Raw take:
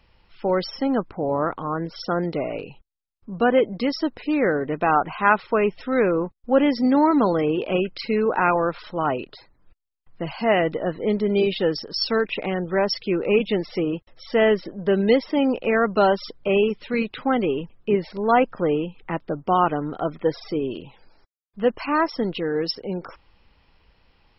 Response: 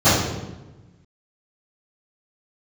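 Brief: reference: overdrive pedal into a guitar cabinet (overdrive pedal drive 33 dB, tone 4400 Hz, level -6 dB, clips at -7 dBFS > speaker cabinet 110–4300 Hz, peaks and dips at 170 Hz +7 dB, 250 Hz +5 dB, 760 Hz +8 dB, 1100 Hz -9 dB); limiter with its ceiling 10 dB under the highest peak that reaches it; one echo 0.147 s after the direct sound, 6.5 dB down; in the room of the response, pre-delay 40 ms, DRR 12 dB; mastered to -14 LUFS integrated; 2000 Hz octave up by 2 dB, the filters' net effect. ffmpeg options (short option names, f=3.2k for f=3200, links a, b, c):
-filter_complex "[0:a]equalizer=f=2k:t=o:g=3.5,alimiter=limit=-12.5dB:level=0:latency=1,aecho=1:1:147:0.473,asplit=2[a][b];[1:a]atrim=start_sample=2205,adelay=40[c];[b][c]afir=irnorm=-1:irlink=0,volume=-37dB[d];[a][d]amix=inputs=2:normalize=0,asplit=2[e][f];[f]highpass=f=720:p=1,volume=33dB,asoftclip=type=tanh:threshold=-7dB[g];[e][g]amix=inputs=2:normalize=0,lowpass=f=4.4k:p=1,volume=-6dB,highpass=110,equalizer=f=170:t=q:w=4:g=7,equalizer=f=250:t=q:w=4:g=5,equalizer=f=760:t=q:w=4:g=8,equalizer=f=1.1k:t=q:w=4:g=-9,lowpass=f=4.3k:w=0.5412,lowpass=f=4.3k:w=1.3066,volume=-1.5dB"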